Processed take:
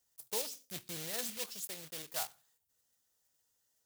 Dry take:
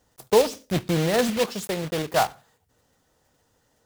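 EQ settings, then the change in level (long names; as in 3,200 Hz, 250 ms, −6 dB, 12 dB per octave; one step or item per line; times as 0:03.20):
first-order pre-emphasis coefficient 0.9
−6.0 dB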